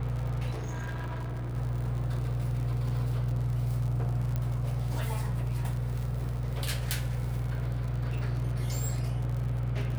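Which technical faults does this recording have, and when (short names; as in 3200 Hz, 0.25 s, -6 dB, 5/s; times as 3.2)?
crackle 74/s -36 dBFS
hum 60 Hz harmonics 4 -36 dBFS
0.51–1.55 clipped -31.5 dBFS
4.36 pop -20 dBFS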